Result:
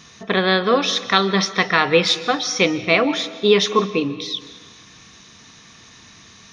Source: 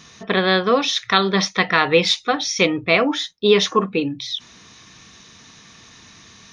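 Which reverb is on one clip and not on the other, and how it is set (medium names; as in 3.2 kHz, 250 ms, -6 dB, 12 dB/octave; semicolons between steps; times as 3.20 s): algorithmic reverb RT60 1.4 s, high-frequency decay 0.85×, pre-delay 100 ms, DRR 14 dB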